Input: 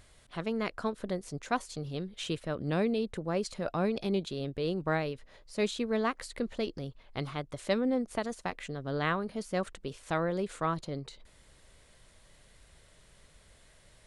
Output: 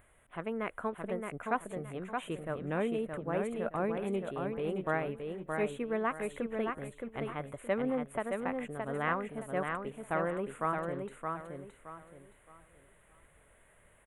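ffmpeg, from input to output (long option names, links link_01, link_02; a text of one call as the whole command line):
ffmpeg -i in.wav -af "asuperstop=centerf=5000:order=4:qfactor=0.65,lowshelf=frequency=330:gain=-7.5,aecho=1:1:620|1240|1860|2480:0.596|0.179|0.0536|0.0161" out.wav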